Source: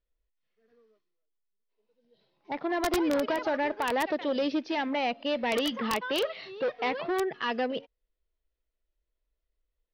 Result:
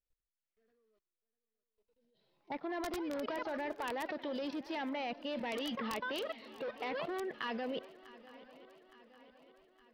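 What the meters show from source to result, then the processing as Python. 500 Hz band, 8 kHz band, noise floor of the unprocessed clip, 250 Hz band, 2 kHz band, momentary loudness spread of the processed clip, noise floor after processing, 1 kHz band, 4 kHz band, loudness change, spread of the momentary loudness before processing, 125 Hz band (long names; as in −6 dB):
−10.0 dB, −11.0 dB, −84 dBFS, −9.5 dB, −9.0 dB, 17 LU, below −85 dBFS, −9.5 dB, −9.5 dB, −9.5 dB, 6 LU, −7.5 dB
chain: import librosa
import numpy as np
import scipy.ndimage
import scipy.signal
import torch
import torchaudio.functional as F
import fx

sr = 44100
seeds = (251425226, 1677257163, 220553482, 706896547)

y = fx.level_steps(x, sr, step_db=19)
y = fx.echo_swing(y, sr, ms=865, ratio=3, feedback_pct=54, wet_db=-19)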